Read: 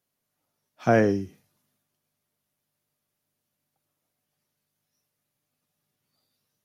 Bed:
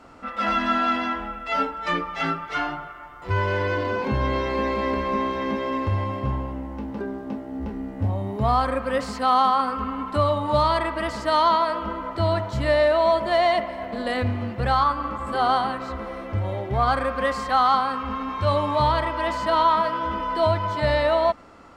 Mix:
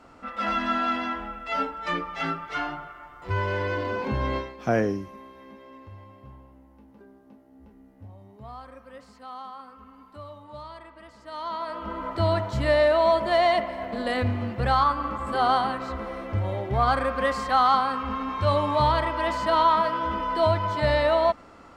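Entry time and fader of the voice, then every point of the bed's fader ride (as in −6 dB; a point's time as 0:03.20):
3.80 s, −3.5 dB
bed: 0:04.37 −3.5 dB
0:04.57 −21 dB
0:11.17 −21 dB
0:12.04 −1 dB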